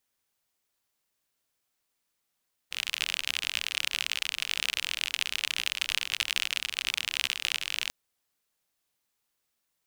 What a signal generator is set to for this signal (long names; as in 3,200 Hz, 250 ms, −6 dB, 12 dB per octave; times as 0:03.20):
rain-like ticks over hiss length 5.19 s, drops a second 49, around 2,800 Hz, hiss −27 dB